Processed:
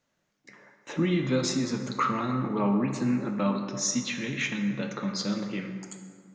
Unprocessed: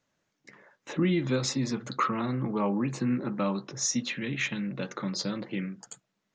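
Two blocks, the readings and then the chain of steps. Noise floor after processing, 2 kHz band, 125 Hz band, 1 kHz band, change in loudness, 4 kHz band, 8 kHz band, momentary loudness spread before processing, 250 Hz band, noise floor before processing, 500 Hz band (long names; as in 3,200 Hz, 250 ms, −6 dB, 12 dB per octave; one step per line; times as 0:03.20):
−77 dBFS, +1.0 dB, +1.0 dB, +2.0 dB, +1.5 dB, +1.0 dB, +1.0 dB, 8 LU, +2.0 dB, −80 dBFS, +1.5 dB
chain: dense smooth reverb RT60 1.9 s, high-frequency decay 0.55×, DRR 4 dB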